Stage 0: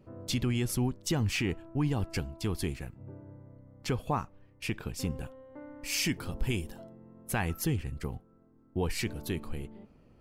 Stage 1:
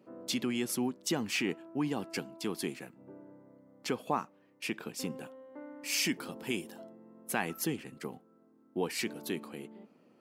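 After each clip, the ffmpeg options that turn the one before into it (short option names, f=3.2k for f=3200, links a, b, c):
-af "highpass=f=200:w=0.5412,highpass=f=200:w=1.3066"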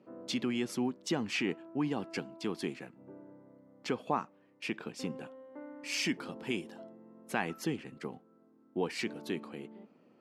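-af "adynamicsmooth=sensitivity=0.5:basefreq=6.2k"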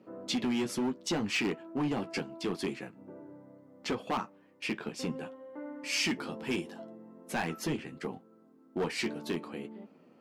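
-filter_complex "[0:a]flanger=delay=9.2:depth=5:regen=-34:speed=0.72:shape=triangular,acrossover=split=4300[a][b];[a]asoftclip=type=hard:threshold=-34dB[c];[c][b]amix=inputs=2:normalize=0,volume=7.5dB"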